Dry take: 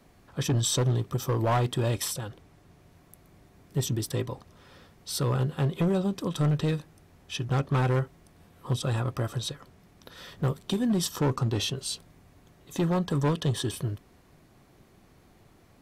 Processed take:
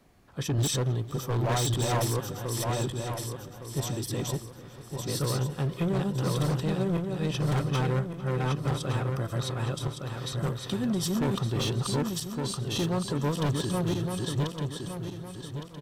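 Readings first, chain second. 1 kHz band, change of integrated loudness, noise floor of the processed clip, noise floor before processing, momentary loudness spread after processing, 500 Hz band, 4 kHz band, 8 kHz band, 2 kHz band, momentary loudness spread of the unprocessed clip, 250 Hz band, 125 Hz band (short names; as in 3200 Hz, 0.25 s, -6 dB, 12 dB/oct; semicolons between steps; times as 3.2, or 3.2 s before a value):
+0.5 dB, -1.0 dB, -45 dBFS, -59 dBFS, 9 LU, +0.5 dB, +0.5 dB, +0.5 dB, +1.0 dB, 12 LU, +0.5 dB, 0.0 dB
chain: regenerating reverse delay 0.581 s, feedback 59%, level -0.5 dB; wavefolder -18 dBFS; outdoor echo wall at 77 m, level -16 dB; gain -3 dB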